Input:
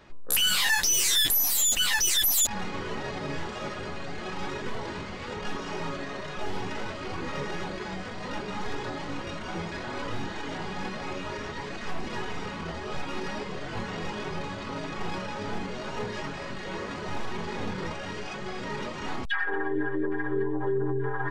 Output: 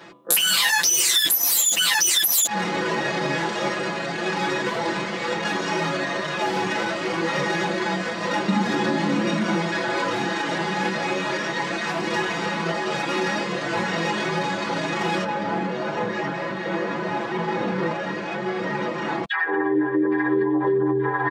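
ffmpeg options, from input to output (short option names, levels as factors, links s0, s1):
-filter_complex "[0:a]asettb=1/sr,asplit=3[s0][s1][s2];[s0]atrim=end=8.484[s3];[s1]atrim=start=8.48:end=9.55,asetpts=PTS-STARTPTS,afade=t=in:d=0.004:c=qsin,afade=t=out:st=1.066:d=0.004:c=qsin,equalizer=f=220:t=o:w=0.77:g=14.5[s4];[s2]atrim=start=9.546[s5];[s3][s4]acrossfade=d=0.004:c1=hsin:c2=qsin[s6];[s6][s5]acrossfade=d=0.004:c1=qsin:c2=hsin,asettb=1/sr,asplit=3[s7][s8][s9];[s7]atrim=end=15.244[s10];[s8]atrim=start=15.24:end=20.06,asetpts=PTS-STARTPTS,afade=t=in:d=0.004:c=qsin,afade=t=out:st=4.816:d=0.004:c=qsin,lowpass=f=1500:p=1[s11];[s9]atrim=start=20.056[s12];[s10][s11]acrossfade=d=0.004:c1=hsin:c2=qsin[s13];[s13][s12]acrossfade=d=0.004:c1=qsin:c2=hsin,highpass=210,aecho=1:1:5.9:0.98,acompressor=threshold=0.0562:ratio=6,volume=2.66"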